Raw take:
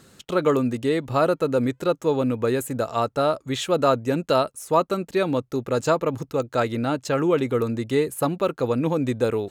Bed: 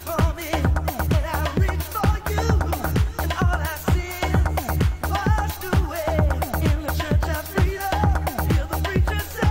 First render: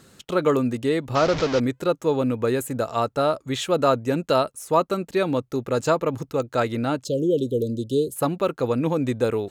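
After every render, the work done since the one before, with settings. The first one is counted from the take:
0:01.15–0:01.60: linear delta modulator 32 kbit/s, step −21 dBFS
0:07.04–0:08.16: Chebyshev band-stop filter 580–3,100 Hz, order 5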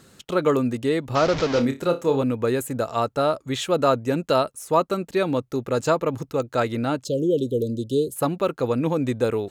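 0:01.47–0:02.23: flutter between parallel walls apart 5 metres, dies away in 0.22 s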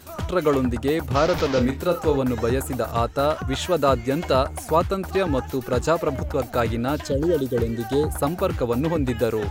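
mix in bed −10 dB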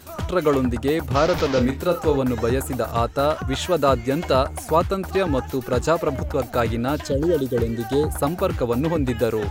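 level +1 dB

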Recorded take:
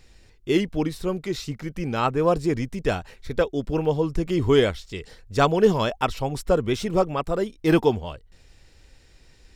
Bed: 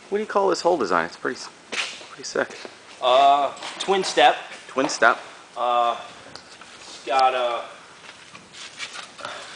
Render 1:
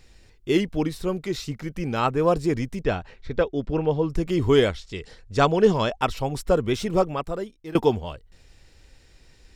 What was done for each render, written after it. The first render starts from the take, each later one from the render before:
0:02.83–0:04.10: high-frequency loss of the air 130 metres
0:04.68–0:06.02: low-pass filter 8,400 Hz
0:07.02–0:07.75: fade out, to −23 dB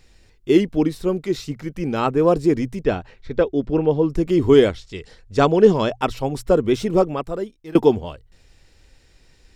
dynamic equaliser 320 Hz, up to +7 dB, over −34 dBFS, Q 0.85
mains-hum notches 60/120 Hz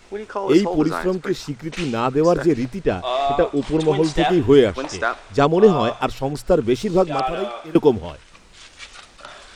mix in bed −5.5 dB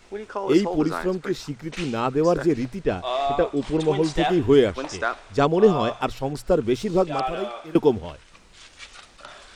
level −3.5 dB

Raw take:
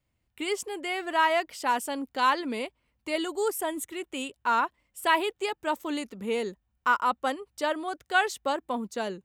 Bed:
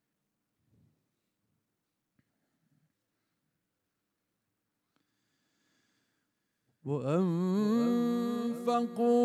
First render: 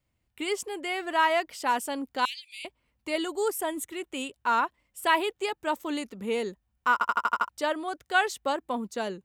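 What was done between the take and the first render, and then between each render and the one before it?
0:02.25–0:02.65: Butterworth high-pass 2,300 Hz 72 dB per octave
0:06.93: stutter in place 0.08 s, 7 plays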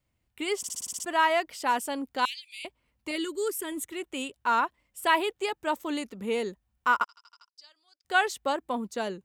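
0:00.58: stutter in place 0.06 s, 8 plays
0:03.11–0:03.72: phaser with its sweep stopped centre 310 Hz, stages 4
0:07.04–0:08.05: resonant band-pass 4,900 Hz, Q 12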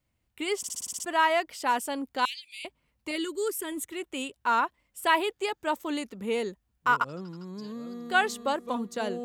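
mix in bed −10.5 dB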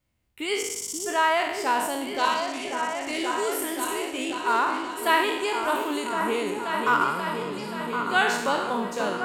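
peak hold with a decay on every bin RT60 0.82 s
echo whose low-pass opens from repeat to repeat 532 ms, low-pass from 400 Hz, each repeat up 2 octaves, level −3 dB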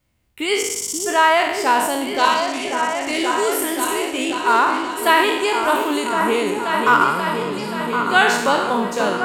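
level +7.5 dB
brickwall limiter −2 dBFS, peak gain reduction 2.5 dB

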